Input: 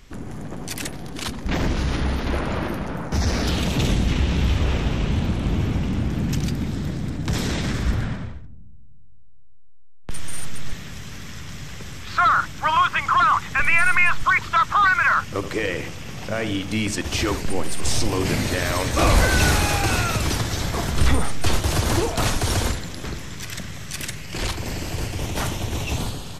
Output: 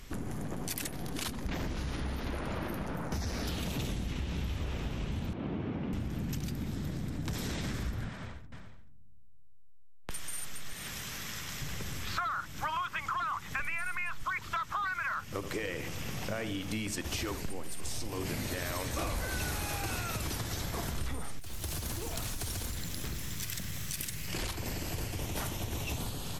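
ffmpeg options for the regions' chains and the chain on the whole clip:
ffmpeg -i in.wav -filter_complex "[0:a]asettb=1/sr,asplit=3[link_01][link_02][link_03];[link_01]atrim=end=5.334[link_04];[link_02]atrim=start=5.33:end=5.93,asetpts=PTS-STARTPTS,afade=type=in:duration=0.004:curve=qsin,afade=type=out:start_time=0.596:duration=0.004:curve=qsin,highpass=320,lowpass=3600,aemphasis=mode=reproduction:type=riaa[link_05];[link_03]atrim=start=5.926[link_06];[link_04][link_05]acrossfade=duration=0.004:curve1=hsin:curve2=qsin[link_07];[link_07][link_06]acrossfade=duration=0.004:curve1=qsin:curve2=hsin,asettb=1/sr,asplit=3[link_08][link_09][link_10];[link_08]atrim=end=8.094[link_11];[link_09]atrim=start=8.09:end=11.62,asetpts=PTS-STARTPTS,afade=type=in:duration=0.004:curve=qsin,afade=type=out:start_time=3.526:duration=0.004:curve=qsin,lowshelf=frequency=390:gain=-10,aecho=1:1:430:0.2,atrim=end_sample=155673[link_12];[link_10]atrim=start=11.616[link_13];[link_11][link_12]acrossfade=duration=0.004:curve1=hsin:curve2=qsin[link_14];[link_14][link_13]acrossfade=duration=0.004:curve1=qsin:curve2=hsin,asettb=1/sr,asplit=3[link_15][link_16][link_17];[link_15]atrim=end=21.394[link_18];[link_16]atrim=start=21.39:end=24.28,asetpts=PTS-STARTPTS,afade=type=in:duration=0.004:curve=qsin,afade=type=out:start_time=2.886:duration=0.004:curve=qsin,equalizer=frequency=690:width=0.39:gain=-7,acompressor=threshold=-26dB:ratio=10:attack=3.2:release=140:knee=1:detection=peak,acrusher=bits=6:mix=0:aa=0.5[link_19];[link_17]atrim=start=24.276[link_20];[link_18][link_19]acrossfade=duration=0.004:curve1=hsin:curve2=qsin[link_21];[link_21][link_20]acrossfade=duration=0.004:curve1=qsin:curve2=hsin,equalizer=frequency=13000:width=1:gain=9.5,acompressor=threshold=-32dB:ratio=6,volume=-1dB" out.wav

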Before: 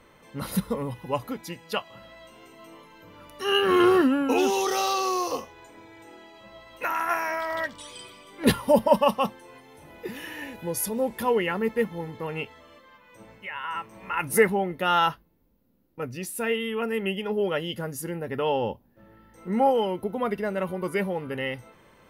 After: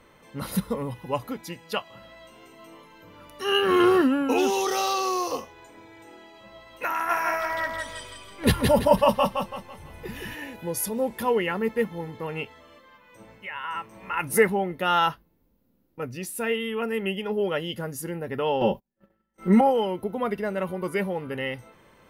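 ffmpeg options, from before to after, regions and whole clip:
ffmpeg -i in.wav -filter_complex "[0:a]asettb=1/sr,asplit=3[link_01][link_02][link_03];[link_01]atrim=end=6.934[link_04];[link_02]atrim=start=6.93:end=10.35,asetpts=PTS-STARTPTS,afade=type=in:duration=0.004:curve=qsin,afade=type=out:start_time=3.416:duration=0.004:curve=qsin,asubboost=boost=8.5:cutoff=110,aecho=1:1:166|332|498|664|830:0.668|0.254|0.0965|0.0367|0.0139,atrim=end_sample=150822[link_05];[link_03]atrim=start=10.346[link_06];[link_04][link_05]acrossfade=duration=0.004:curve1=hsin:curve2=qsin[link_07];[link_07][link_06]acrossfade=duration=0.004:curve1=qsin:curve2=hsin,asettb=1/sr,asplit=3[link_08][link_09][link_10];[link_08]atrim=end=18.614[link_11];[link_09]atrim=start=18.61:end=19.61,asetpts=PTS-STARTPTS,afade=type=in:duration=0.004:curve=qsin,afade=type=out:start_time=0.996:duration=0.004:curve=qsin,acontrast=31,agate=range=-32dB:threshold=-45dB:ratio=16:release=100:detection=peak,aecho=1:1:5.2:0.87,atrim=end_sample=44100[link_12];[link_10]atrim=start=19.606[link_13];[link_11][link_12]acrossfade=duration=0.004:curve1=hsin:curve2=qsin[link_14];[link_14][link_13]acrossfade=duration=0.004:curve1=qsin:curve2=hsin" out.wav

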